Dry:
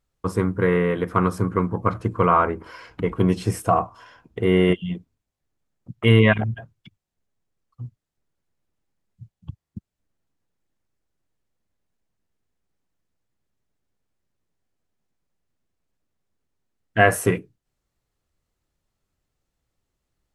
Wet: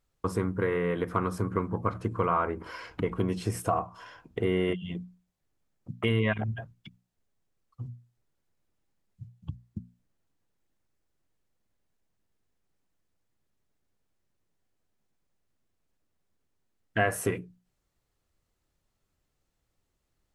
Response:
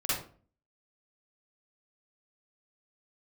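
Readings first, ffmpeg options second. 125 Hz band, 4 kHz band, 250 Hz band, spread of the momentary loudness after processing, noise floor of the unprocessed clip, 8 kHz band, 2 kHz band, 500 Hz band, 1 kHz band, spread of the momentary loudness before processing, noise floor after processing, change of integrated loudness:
−9.5 dB, −9.0 dB, −9.0 dB, 17 LU, −83 dBFS, −6.0 dB, −9.5 dB, −8.0 dB, −8.5 dB, 19 LU, −79 dBFS, −9.0 dB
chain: -af "acompressor=threshold=-27dB:ratio=2.5,bandreject=frequency=60:width_type=h:width=6,bandreject=frequency=120:width_type=h:width=6,bandreject=frequency=180:width_type=h:width=6,bandreject=frequency=240:width_type=h:width=6"

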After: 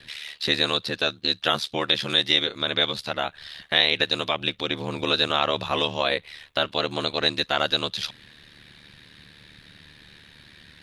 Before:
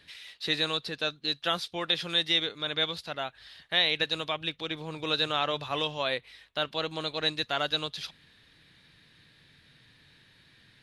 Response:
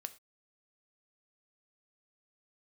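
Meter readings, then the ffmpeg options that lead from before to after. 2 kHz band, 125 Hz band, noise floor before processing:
+6.0 dB, +5.5 dB, −61 dBFS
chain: -filter_complex "[0:a]asplit=2[link_01][link_02];[link_02]acompressor=threshold=-36dB:ratio=6,volume=0dB[link_03];[link_01][link_03]amix=inputs=2:normalize=0,aeval=exprs='val(0)*sin(2*PI*37*n/s)':channel_layout=same,volume=6.5dB"

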